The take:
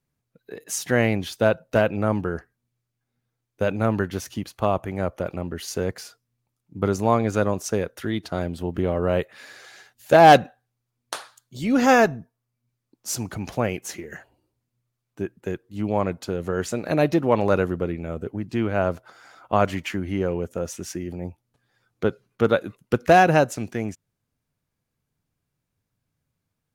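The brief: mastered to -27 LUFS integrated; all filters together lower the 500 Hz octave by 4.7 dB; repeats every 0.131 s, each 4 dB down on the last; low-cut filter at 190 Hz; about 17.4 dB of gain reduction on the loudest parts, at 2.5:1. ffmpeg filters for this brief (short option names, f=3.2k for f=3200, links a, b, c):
-af "highpass=190,equalizer=f=500:t=o:g=-6,acompressor=threshold=-37dB:ratio=2.5,aecho=1:1:131|262|393|524|655|786|917|1048|1179:0.631|0.398|0.25|0.158|0.0994|0.0626|0.0394|0.0249|0.0157,volume=9.5dB"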